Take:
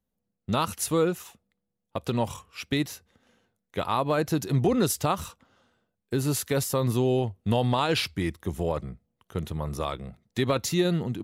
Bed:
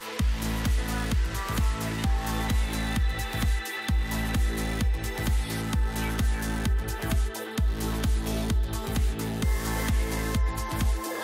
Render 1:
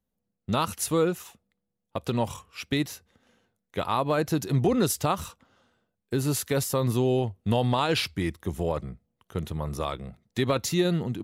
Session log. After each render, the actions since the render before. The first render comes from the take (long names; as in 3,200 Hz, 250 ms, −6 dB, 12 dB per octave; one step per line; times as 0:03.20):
no processing that can be heard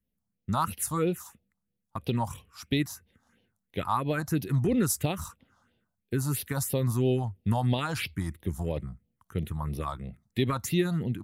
all-pass phaser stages 4, 3 Hz, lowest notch 400–1,300 Hz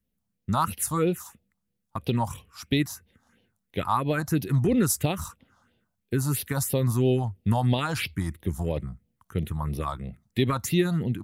level +3 dB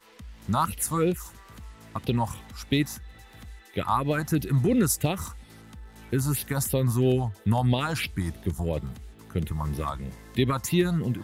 mix in bed −18.5 dB